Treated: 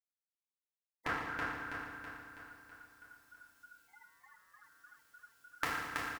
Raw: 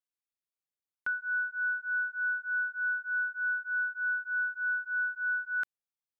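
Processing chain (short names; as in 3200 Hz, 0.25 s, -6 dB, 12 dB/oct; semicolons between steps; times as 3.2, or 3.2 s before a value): FDN reverb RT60 1.6 s, low-frequency decay 1.35×, high-frequency decay 0.85×, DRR -7.5 dB; spectral gate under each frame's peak -30 dB weak; 3.87–4.62 ring modulator 700 Hz -> 200 Hz; on a send: feedback echo 0.326 s, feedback 53%, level -3.5 dB; on the sum: gain +13 dB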